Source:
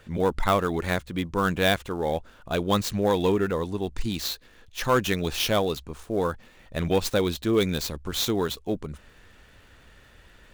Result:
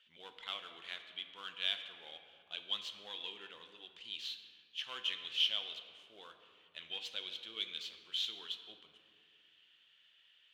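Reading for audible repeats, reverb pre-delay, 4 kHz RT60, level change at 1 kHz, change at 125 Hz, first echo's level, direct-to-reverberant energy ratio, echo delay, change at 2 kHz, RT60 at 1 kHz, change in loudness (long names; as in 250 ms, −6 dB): no echo audible, 5 ms, 1.3 s, −25.5 dB, below −40 dB, no echo audible, 6.0 dB, no echo audible, −15.5 dB, 2.1 s, −13.5 dB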